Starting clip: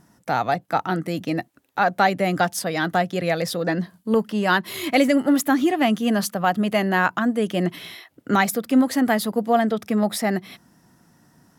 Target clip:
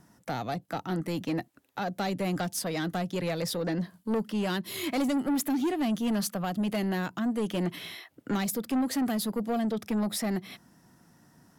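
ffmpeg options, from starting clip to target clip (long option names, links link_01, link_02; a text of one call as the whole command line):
ffmpeg -i in.wav -filter_complex "[0:a]acrossover=split=490|3000[link_01][link_02][link_03];[link_02]acompressor=threshold=-31dB:ratio=6[link_04];[link_01][link_04][link_03]amix=inputs=3:normalize=0,asoftclip=type=tanh:threshold=-20.5dB,volume=-3dB" out.wav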